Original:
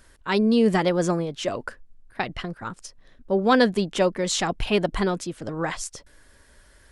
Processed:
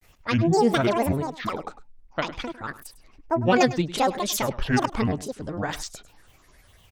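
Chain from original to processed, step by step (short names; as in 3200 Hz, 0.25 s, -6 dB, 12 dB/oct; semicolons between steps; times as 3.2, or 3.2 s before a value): grains, spray 15 ms, pitch spread up and down by 12 st; echo 0.102 s -16 dB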